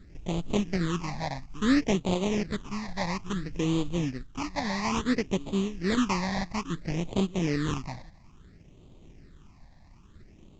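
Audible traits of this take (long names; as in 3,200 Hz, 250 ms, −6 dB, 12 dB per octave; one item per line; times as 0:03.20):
aliases and images of a low sample rate 1,500 Hz, jitter 20%
phaser sweep stages 8, 0.59 Hz, lowest notch 380–1,700 Hz
mu-law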